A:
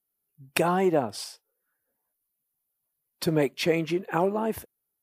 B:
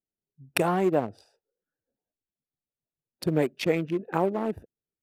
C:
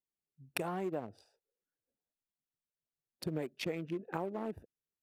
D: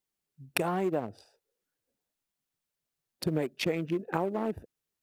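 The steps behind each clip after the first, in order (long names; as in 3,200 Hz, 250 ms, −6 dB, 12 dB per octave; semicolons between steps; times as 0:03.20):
adaptive Wiener filter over 41 samples
downward compressor, threshold −26 dBFS, peak gain reduction 8 dB; level −7 dB
floating-point word with a short mantissa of 6 bits; level +7.5 dB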